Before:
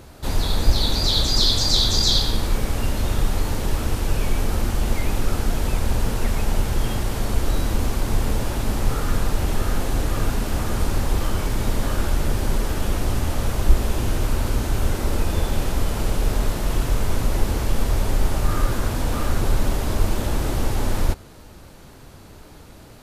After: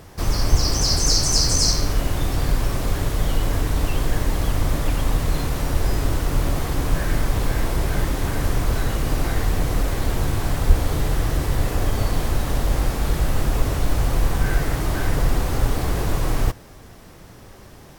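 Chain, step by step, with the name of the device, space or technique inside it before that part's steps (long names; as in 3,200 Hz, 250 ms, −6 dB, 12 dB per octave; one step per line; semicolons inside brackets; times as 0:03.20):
nightcore (speed change +28%)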